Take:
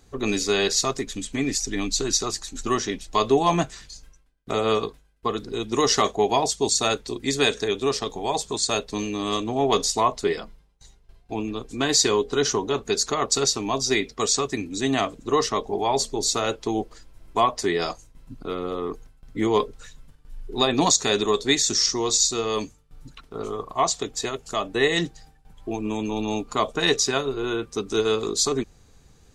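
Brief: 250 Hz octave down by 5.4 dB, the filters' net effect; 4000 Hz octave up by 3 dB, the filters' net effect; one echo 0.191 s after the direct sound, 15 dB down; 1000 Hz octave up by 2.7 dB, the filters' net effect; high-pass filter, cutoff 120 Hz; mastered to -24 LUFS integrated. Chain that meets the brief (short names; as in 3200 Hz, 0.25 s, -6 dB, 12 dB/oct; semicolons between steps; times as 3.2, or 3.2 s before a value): HPF 120 Hz; bell 250 Hz -7.5 dB; bell 1000 Hz +3.5 dB; bell 4000 Hz +3.5 dB; echo 0.191 s -15 dB; gain -1.5 dB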